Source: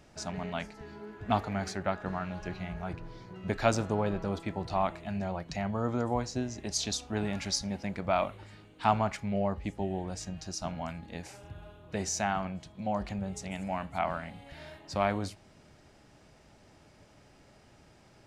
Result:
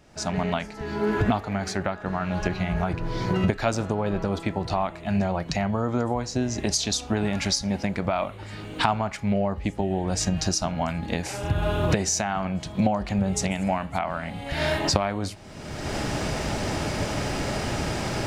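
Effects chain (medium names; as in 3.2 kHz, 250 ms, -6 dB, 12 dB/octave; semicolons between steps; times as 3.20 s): recorder AGC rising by 35 dB/s; trim +1 dB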